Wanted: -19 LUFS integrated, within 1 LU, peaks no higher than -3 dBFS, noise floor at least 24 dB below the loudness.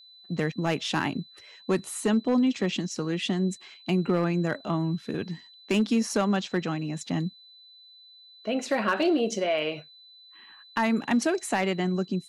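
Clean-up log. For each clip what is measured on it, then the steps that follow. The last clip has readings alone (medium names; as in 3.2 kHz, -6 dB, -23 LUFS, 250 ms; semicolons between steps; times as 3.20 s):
clipped samples 0.4%; clipping level -16.5 dBFS; steady tone 4 kHz; tone level -50 dBFS; loudness -27.5 LUFS; peak level -16.5 dBFS; loudness target -19.0 LUFS
-> clip repair -16.5 dBFS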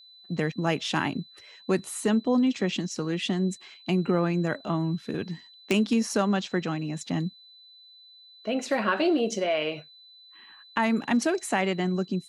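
clipped samples 0.0%; steady tone 4 kHz; tone level -50 dBFS
-> band-stop 4 kHz, Q 30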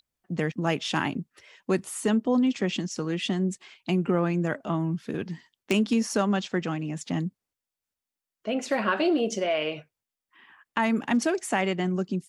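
steady tone not found; loudness -27.5 LUFS; peak level -8.0 dBFS; loudness target -19.0 LUFS
-> trim +8.5 dB; peak limiter -3 dBFS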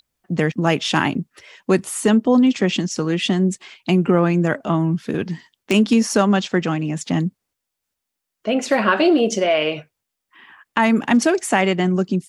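loudness -19.0 LUFS; peak level -3.0 dBFS; noise floor -81 dBFS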